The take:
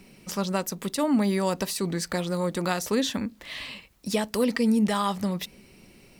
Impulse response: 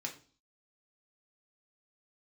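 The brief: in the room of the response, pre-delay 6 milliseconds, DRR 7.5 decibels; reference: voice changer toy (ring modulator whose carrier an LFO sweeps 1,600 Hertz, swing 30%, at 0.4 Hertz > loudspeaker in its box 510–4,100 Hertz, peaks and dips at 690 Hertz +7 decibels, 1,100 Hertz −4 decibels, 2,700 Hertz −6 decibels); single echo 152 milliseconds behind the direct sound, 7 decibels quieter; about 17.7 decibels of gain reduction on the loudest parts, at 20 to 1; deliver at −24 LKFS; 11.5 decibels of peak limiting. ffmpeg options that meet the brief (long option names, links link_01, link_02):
-filter_complex "[0:a]acompressor=threshold=-36dB:ratio=20,alimiter=level_in=9dB:limit=-24dB:level=0:latency=1,volume=-9dB,aecho=1:1:152:0.447,asplit=2[link_01][link_02];[1:a]atrim=start_sample=2205,adelay=6[link_03];[link_02][link_03]afir=irnorm=-1:irlink=0,volume=-7.5dB[link_04];[link_01][link_04]amix=inputs=2:normalize=0,aeval=exprs='val(0)*sin(2*PI*1600*n/s+1600*0.3/0.4*sin(2*PI*0.4*n/s))':channel_layout=same,highpass=510,equalizer=frequency=690:width_type=q:width=4:gain=7,equalizer=frequency=1100:width_type=q:width=4:gain=-4,equalizer=frequency=2700:width_type=q:width=4:gain=-6,lowpass=frequency=4100:width=0.5412,lowpass=frequency=4100:width=1.3066,volume=20dB"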